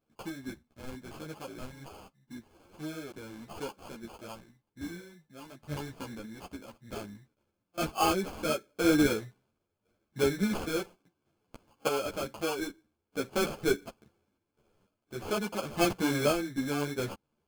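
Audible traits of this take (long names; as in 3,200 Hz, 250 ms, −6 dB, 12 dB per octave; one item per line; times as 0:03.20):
sample-and-hold tremolo 1.6 Hz, depth 75%
aliases and images of a low sample rate 1,900 Hz, jitter 0%
a shimmering, thickened sound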